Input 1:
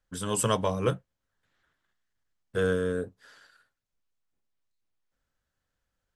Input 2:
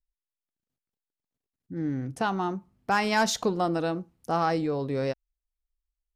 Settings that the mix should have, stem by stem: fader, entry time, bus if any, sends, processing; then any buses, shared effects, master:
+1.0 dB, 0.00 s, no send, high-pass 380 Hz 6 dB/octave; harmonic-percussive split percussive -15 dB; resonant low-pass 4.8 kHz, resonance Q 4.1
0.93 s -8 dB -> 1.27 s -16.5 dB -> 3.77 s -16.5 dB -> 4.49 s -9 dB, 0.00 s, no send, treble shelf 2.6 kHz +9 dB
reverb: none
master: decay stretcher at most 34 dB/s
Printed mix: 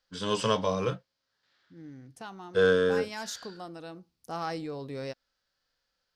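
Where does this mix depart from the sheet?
stem 1 +1.0 dB -> +7.0 dB; master: missing decay stretcher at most 34 dB/s

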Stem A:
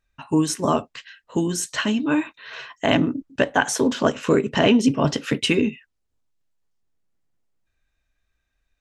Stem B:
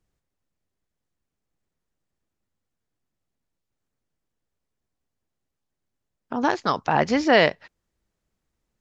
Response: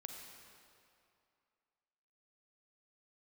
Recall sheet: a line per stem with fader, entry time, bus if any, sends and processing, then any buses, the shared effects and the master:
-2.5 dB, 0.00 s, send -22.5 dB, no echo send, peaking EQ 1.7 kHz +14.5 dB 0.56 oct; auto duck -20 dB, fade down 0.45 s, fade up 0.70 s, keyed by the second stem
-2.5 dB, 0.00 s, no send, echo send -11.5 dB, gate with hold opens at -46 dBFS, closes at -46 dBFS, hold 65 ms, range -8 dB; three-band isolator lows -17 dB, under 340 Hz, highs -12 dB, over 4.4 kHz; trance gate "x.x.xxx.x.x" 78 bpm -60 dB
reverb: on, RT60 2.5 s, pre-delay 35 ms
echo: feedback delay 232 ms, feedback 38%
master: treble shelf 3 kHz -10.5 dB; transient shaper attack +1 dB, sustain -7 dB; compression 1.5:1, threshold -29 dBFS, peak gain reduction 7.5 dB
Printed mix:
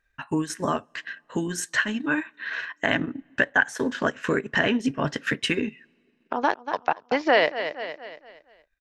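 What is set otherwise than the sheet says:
stem B -2.5 dB -> +6.5 dB; master: missing treble shelf 3 kHz -10.5 dB

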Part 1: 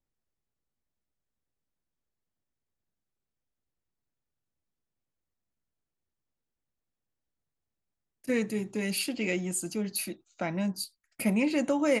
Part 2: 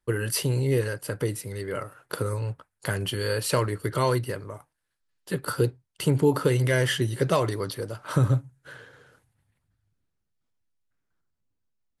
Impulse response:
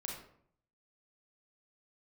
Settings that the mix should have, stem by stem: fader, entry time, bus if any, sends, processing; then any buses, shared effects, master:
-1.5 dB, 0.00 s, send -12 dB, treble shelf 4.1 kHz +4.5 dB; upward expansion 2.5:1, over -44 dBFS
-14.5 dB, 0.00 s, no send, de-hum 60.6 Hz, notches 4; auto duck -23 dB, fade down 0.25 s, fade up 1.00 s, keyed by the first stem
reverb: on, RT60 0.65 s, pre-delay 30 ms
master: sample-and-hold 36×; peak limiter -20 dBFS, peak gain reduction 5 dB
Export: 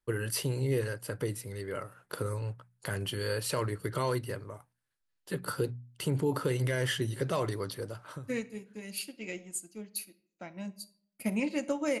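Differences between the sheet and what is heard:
stem 2 -14.5 dB -> -5.5 dB; master: missing sample-and-hold 36×

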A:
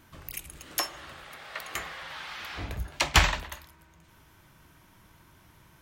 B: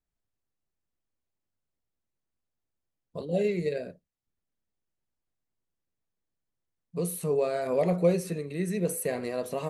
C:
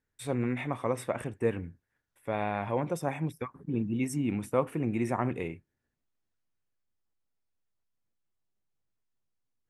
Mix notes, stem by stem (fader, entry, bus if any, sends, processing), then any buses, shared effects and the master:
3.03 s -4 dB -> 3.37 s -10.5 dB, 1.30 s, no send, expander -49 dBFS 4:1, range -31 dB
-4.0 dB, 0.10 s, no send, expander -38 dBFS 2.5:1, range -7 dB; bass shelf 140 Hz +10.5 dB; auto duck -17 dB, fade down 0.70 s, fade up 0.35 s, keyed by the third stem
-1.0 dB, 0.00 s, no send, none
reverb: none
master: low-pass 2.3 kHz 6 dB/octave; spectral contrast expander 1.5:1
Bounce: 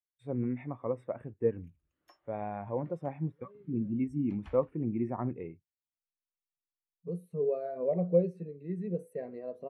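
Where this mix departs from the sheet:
stem A -4.0 dB -> -14.0 dB; stem B: missing bass shelf 140 Hz +10.5 dB

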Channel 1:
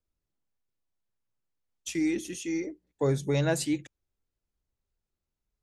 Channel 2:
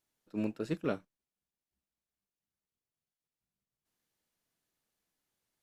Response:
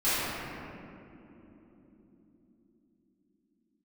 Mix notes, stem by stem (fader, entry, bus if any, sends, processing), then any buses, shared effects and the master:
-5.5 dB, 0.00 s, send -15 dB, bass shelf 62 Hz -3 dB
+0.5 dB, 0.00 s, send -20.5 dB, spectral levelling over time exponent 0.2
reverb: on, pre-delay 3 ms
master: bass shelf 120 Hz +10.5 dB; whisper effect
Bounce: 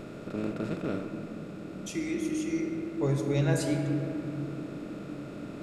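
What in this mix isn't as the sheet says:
stem 2 +0.5 dB -> -6.0 dB; master: missing whisper effect

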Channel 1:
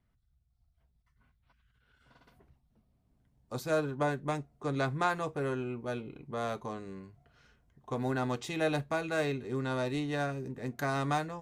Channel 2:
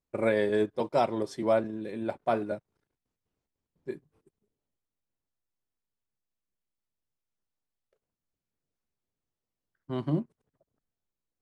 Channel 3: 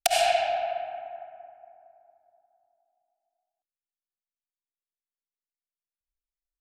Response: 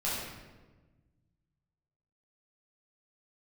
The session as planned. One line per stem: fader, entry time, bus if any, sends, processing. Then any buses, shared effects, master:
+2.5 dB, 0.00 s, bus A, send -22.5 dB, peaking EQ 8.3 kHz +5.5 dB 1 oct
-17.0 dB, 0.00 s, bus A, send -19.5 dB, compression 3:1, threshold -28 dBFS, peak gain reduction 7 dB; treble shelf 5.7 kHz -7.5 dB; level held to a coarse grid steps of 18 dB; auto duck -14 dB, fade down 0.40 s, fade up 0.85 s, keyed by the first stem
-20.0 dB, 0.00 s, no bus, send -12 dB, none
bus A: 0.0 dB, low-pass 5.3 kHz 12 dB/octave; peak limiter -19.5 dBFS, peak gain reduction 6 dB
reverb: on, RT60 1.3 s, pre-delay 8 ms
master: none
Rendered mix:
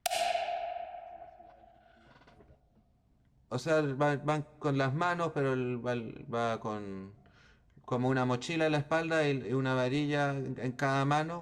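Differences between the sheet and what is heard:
stem 2: missing compression 3:1, threshold -28 dBFS, peak gain reduction 7 dB; stem 3 -20.0 dB -> -9.5 dB; reverb return -8.0 dB

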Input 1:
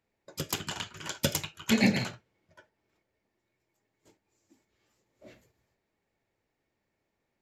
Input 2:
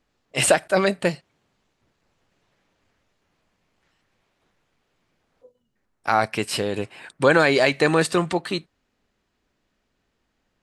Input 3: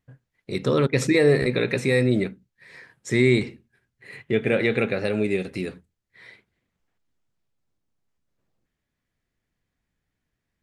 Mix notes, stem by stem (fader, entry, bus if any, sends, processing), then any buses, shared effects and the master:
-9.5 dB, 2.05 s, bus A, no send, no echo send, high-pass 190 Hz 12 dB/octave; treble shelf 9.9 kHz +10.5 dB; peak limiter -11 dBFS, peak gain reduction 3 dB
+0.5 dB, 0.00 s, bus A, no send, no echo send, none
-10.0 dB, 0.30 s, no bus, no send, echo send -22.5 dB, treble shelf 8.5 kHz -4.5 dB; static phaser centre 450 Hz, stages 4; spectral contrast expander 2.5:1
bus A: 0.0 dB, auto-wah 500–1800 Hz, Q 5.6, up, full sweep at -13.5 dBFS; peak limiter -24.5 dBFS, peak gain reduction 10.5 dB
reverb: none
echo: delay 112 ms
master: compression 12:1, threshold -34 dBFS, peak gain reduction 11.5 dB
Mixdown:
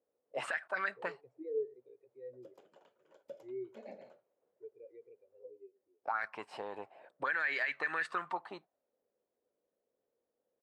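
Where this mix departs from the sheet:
stem 3 -10.0 dB -> -17.5 dB; master: missing compression 12:1, threshold -34 dBFS, peak gain reduction 11.5 dB

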